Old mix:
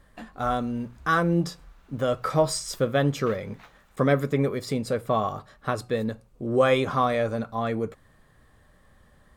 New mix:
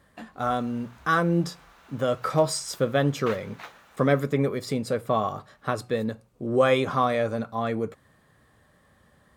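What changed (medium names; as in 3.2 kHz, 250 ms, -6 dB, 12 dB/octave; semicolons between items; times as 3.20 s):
background +9.0 dB; master: add high-pass 87 Hz 12 dB/octave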